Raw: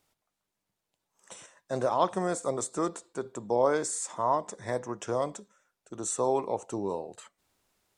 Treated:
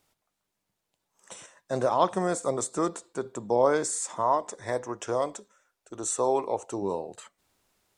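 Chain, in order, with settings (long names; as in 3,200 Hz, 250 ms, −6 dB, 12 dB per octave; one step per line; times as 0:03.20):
0:04.23–0:06.82: parametric band 170 Hz −12 dB 0.68 octaves
level +2.5 dB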